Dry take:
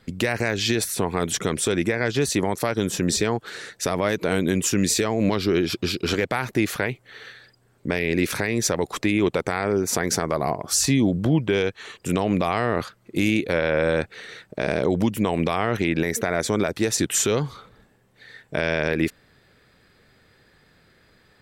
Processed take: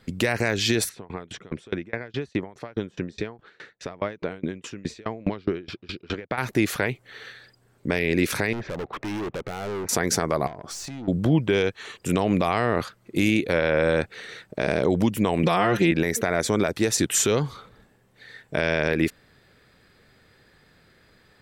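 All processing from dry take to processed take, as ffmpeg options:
-filter_complex "[0:a]asettb=1/sr,asplit=3[a][b][c];[a]atrim=end=0.894[d];[b]atrim=start=0.89:end=6.38,asetpts=PTS-STARTPTS,afade=t=in:d=0.004:c=qsin,afade=t=out:st=5.486:d=0.004:c=qsin,lowpass=3k,aeval=exprs='val(0)*pow(10,-29*if(lt(mod(4.8*n/s,1),2*abs(4.8)/1000),1-mod(4.8*n/s,1)/(2*abs(4.8)/1000),(mod(4.8*n/s,1)-2*abs(4.8)/1000)/(1-2*abs(4.8)/1000))/20)':c=same[e];[c]atrim=start=6.376[f];[d][e]acrossfade=d=0.004:c1=hsin:c2=qsin[g];[g][f]acrossfade=d=0.004:c1=qsin:c2=hsin,asettb=1/sr,asplit=3[h][i][j];[h]atrim=end=8.534[k];[i]atrim=start=8.53:end=9.89,asetpts=PTS-STARTPTS,afade=t=in:d=0.004:c=qsin,afade=t=out:st=1.356:d=0.004:c=qsin,lowpass=f=2.4k:w=0.5412,lowpass=f=2.4k:w=1.3066,volume=28dB,asoftclip=hard,volume=-28dB[l];[j]atrim=start=9.886[m];[k][l]acrossfade=d=0.004:c1=hsin:c2=qsin[n];[n][m]acrossfade=d=0.004:c1=qsin:c2=hsin,asettb=1/sr,asplit=3[o][p][q];[o]atrim=end=10.474[r];[p]atrim=start=10.47:end=11.08,asetpts=PTS-STARTPTS,afade=t=in:d=0.004:c=qsin,afade=t=out:st=0.606:d=0.004:c=qsin,lowpass=7.5k,aeval=exprs='(tanh(11.2*val(0)+0.35)-tanh(0.35))/11.2':c=same,acompressor=threshold=-32dB:ratio=12:attack=3.2:release=140:knee=1:detection=peak[s];[q]atrim=start=11.076[t];[r][s]acrossfade=d=0.004:c1=hsin:c2=qsin[u];[u][t]acrossfade=d=0.004:c1=qsin:c2=hsin,asettb=1/sr,asplit=3[v][w][x];[v]atrim=end=15.434[y];[w]atrim=start=15.43:end=15.91,asetpts=PTS-STARTPTS,afade=t=in:d=0.004:c=qsin,afade=t=out:st=0.476:d=0.004:c=qsin,bandreject=f=2.2k:w=13,aecho=1:1:5.7:0.96,atrim=end_sample=21168[z];[x]atrim=start=15.906[aa];[y][z]acrossfade=d=0.004:c1=hsin:c2=qsin[ab];[ab][aa]acrossfade=d=0.004:c1=qsin:c2=hsin"

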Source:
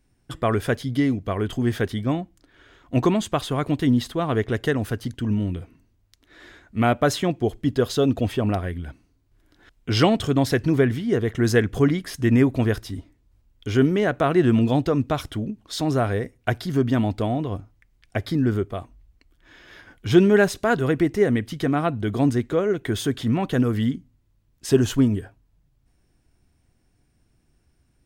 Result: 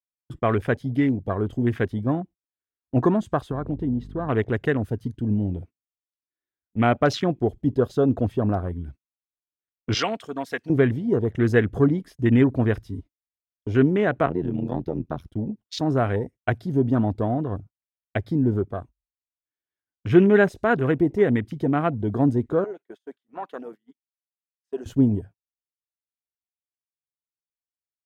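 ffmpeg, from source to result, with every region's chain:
-filter_complex "[0:a]asettb=1/sr,asplit=3[a][b][c];[a]atrim=end=3.514[d];[b]atrim=start=3.51:end=4.29,asetpts=PTS-STARTPTS,afade=t=in:d=0.004:c=qsin,afade=t=out:st=0.776:d=0.004:c=qsin,lowpass=f=1.9k:p=1,acompressor=threshold=-25dB:ratio=2:attack=3.2:release=140:knee=1:detection=peak,aeval=exprs='val(0)+0.0141*(sin(2*PI*50*n/s)+sin(2*PI*2*50*n/s)/2+sin(2*PI*3*50*n/s)/3+sin(2*PI*4*50*n/s)/4+sin(2*PI*5*50*n/s)/5)':c=same[e];[c]atrim=start=4.286[f];[d][e]acrossfade=d=0.004:c1=hsin:c2=qsin[g];[g][f]acrossfade=d=0.004:c1=qsin:c2=hsin,asettb=1/sr,asplit=3[h][i][j];[h]atrim=end=9.944[k];[i]atrim=start=9.94:end=10.7,asetpts=PTS-STARTPTS,afade=t=in:d=0.004:c=qsin,afade=t=out:st=0.756:d=0.004:c=qsin,highpass=f=1.3k:p=1,aecho=1:1:4.3:0.41,atrim=end_sample=33516[l];[j]atrim=start=10.696[m];[k][l]acrossfade=d=0.004:c1=hsin:c2=qsin[n];[n][m]acrossfade=d=0.004:c1=qsin:c2=hsin,asettb=1/sr,asplit=3[o][p][q];[o]atrim=end=14.264[r];[p]atrim=start=14.26:end=15.28,asetpts=PTS-STARTPTS,afade=t=in:d=0.004:c=qsin,afade=t=out:st=1.016:d=0.004:c=qsin,acrossover=split=310|770[s][t][u];[s]acompressor=threshold=-22dB:ratio=4[v];[t]acompressor=threshold=-28dB:ratio=4[w];[u]acompressor=threshold=-30dB:ratio=4[x];[v][w][x]amix=inputs=3:normalize=0,tremolo=f=85:d=0.919,equalizer=f=7.9k:t=o:w=0.26:g=-14.5[y];[q]atrim=start=15.276[z];[r][y]acrossfade=d=0.004:c1=hsin:c2=qsin[aa];[aa][z]acrossfade=d=0.004:c1=qsin:c2=hsin,asettb=1/sr,asplit=3[ab][ac][ad];[ab]atrim=end=22.644[ae];[ac]atrim=start=22.64:end=24.86,asetpts=PTS-STARTPTS,afade=t=in:d=0.004:c=qsin,afade=t=out:st=2.216:d=0.004:c=qsin,highpass=780,highshelf=f=3.8k:g=-8.5[af];[ad]atrim=start=24.856[ag];[ae][af]acrossfade=d=0.004:c1=hsin:c2=qsin[ah];[ah][ag]acrossfade=d=0.004:c1=qsin:c2=hsin,afwtdn=0.0251,highpass=47,agate=range=-34dB:threshold=-40dB:ratio=16:detection=peak"

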